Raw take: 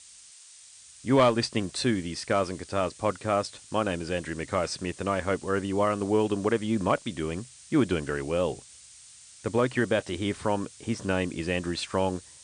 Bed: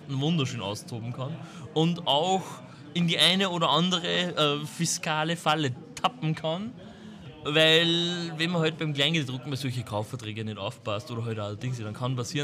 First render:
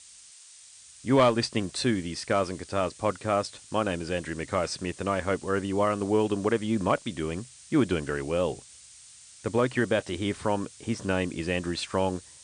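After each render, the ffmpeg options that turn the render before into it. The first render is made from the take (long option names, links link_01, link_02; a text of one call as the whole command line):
ffmpeg -i in.wav -af anull out.wav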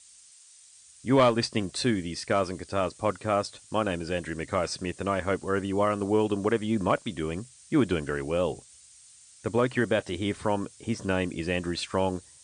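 ffmpeg -i in.wav -af "afftdn=noise_reduction=6:noise_floor=-51" out.wav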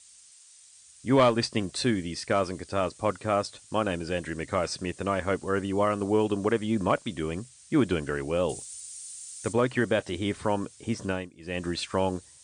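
ffmpeg -i in.wav -filter_complex "[0:a]asettb=1/sr,asplit=3[link_01][link_02][link_03];[link_01]atrim=end=8.494[link_04];[link_02]atrim=start=8.49:end=9.53,asetpts=PTS-STARTPTS,afade=type=in:duration=0.004:curve=qsin,afade=type=out:start_time=1.036:duration=0.004:curve=qsin,aemphasis=mode=production:type=75kf[link_05];[link_03]atrim=start=9.526[link_06];[link_04][link_05]acrossfade=duration=0.004:curve1=hsin:curve2=qsin[link_07];[link_07][link_06]acrossfade=duration=0.004:curve1=qsin:curve2=hsin,asplit=3[link_08][link_09][link_10];[link_08]atrim=end=11.3,asetpts=PTS-STARTPTS,afade=type=out:start_time=11.04:duration=0.26:silence=0.112202[link_11];[link_09]atrim=start=11.3:end=11.39,asetpts=PTS-STARTPTS,volume=-19dB[link_12];[link_10]atrim=start=11.39,asetpts=PTS-STARTPTS,afade=type=in:duration=0.26:silence=0.112202[link_13];[link_11][link_12][link_13]concat=n=3:v=0:a=1" out.wav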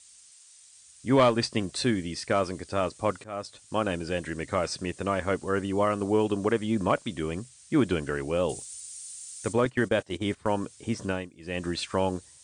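ffmpeg -i in.wav -filter_complex "[0:a]asettb=1/sr,asplit=3[link_01][link_02][link_03];[link_01]atrim=end=9.654[link_04];[link_02]atrim=start=9.65:end=10.54,asetpts=PTS-STARTPTS,afade=type=in:duration=0.004:curve=qsin,afade=type=out:start_time=0.886:duration=0.004:curve=qsin,agate=range=-14dB:threshold=-34dB:ratio=16:release=100:detection=peak[link_05];[link_03]atrim=start=10.536[link_06];[link_04][link_05]acrossfade=duration=0.004:curve1=hsin:curve2=qsin[link_07];[link_07][link_06]acrossfade=duration=0.004:curve1=qsin:curve2=hsin,asplit=2[link_08][link_09];[link_08]atrim=end=3.24,asetpts=PTS-STARTPTS,afade=type=out:start_time=3.236:duration=0.004:curve=hsin:silence=0.105925[link_10];[link_09]atrim=start=3.24,asetpts=PTS-STARTPTS,afade=type=in:duration=0.7:curve=qsin:silence=0.105925[link_11];[link_10][link_11]concat=n=2:v=0:a=1" out.wav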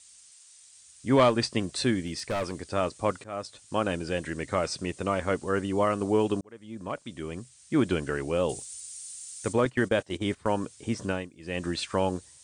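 ffmpeg -i in.wav -filter_complex "[0:a]asettb=1/sr,asplit=3[link_01][link_02][link_03];[link_01]atrim=end=2.064[link_04];[link_02]atrim=start=2.06:end=2.63,asetpts=PTS-STARTPTS,afade=type=in:duration=0.004:curve=qsin,afade=type=out:start_time=0.566:duration=0.004:curve=qsin,volume=26dB,asoftclip=hard,volume=-26dB[link_05];[link_03]atrim=start=2.626[link_06];[link_04][link_05]acrossfade=duration=0.004:curve1=hsin:curve2=qsin[link_07];[link_07][link_06]acrossfade=duration=0.004:curve1=qsin:curve2=hsin,asettb=1/sr,asplit=3[link_08][link_09][link_10];[link_08]atrim=end=4.664[link_11];[link_09]atrim=start=4.66:end=5.2,asetpts=PTS-STARTPTS,afade=type=in:duration=0.004:curve=qsin,afade=type=out:start_time=0.536:duration=0.004:curve=qsin,bandreject=frequency=1700:width=12[link_12];[link_10]atrim=start=5.196[link_13];[link_11][link_12]acrossfade=duration=0.004:curve1=hsin:curve2=qsin[link_14];[link_14][link_13]acrossfade=duration=0.004:curve1=qsin:curve2=hsin,asplit=2[link_15][link_16];[link_15]atrim=end=6.41,asetpts=PTS-STARTPTS,afade=type=out:start_time=6.406:duration=0.004:curve=hsin[link_17];[link_16]atrim=start=6.41,asetpts=PTS-STARTPTS,afade=type=in:duration=1.51[link_18];[link_17][link_18]concat=n=2:v=0:a=1" out.wav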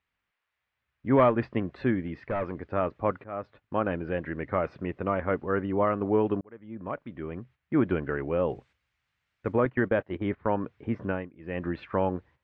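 ffmpeg -i in.wav -af "lowpass=frequency=2100:width=0.5412,lowpass=frequency=2100:width=1.3066,agate=range=-9dB:threshold=-53dB:ratio=16:detection=peak" out.wav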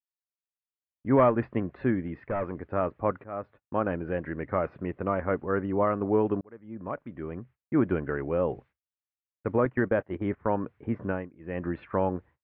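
ffmpeg -i in.wav -af "lowpass=2100,agate=range=-33dB:threshold=-46dB:ratio=3:detection=peak" out.wav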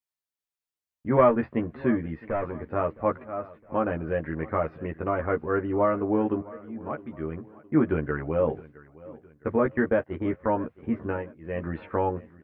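ffmpeg -i in.wav -filter_complex "[0:a]asplit=2[link_01][link_02];[link_02]adelay=13,volume=-3dB[link_03];[link_01][link_03]amix=inputs=2:normalize=0,aecho=1:1:663|1326|1989:0.0944|0.0406|0.0175" out.wav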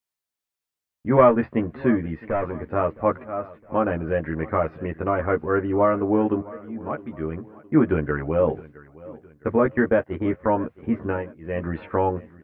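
ffmpeg -i in.wav -af "volume=4dB" out.wav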